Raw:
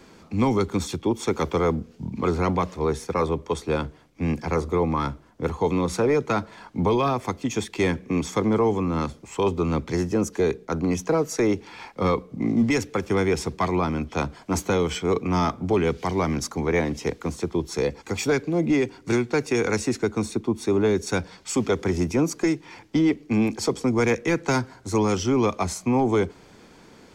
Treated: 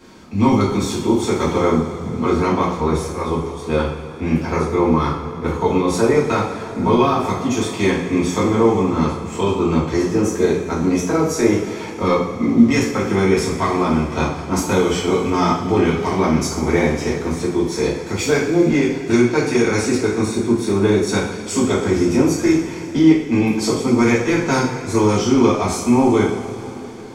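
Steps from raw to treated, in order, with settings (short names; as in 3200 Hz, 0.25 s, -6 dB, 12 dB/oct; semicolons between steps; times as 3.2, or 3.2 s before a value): 2.77–3.63 auto swell 0.205 s; two-slope reverb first 0.54 s, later 4.1 s, from -17 dB, DRR -7 dB; gain -1.5 dB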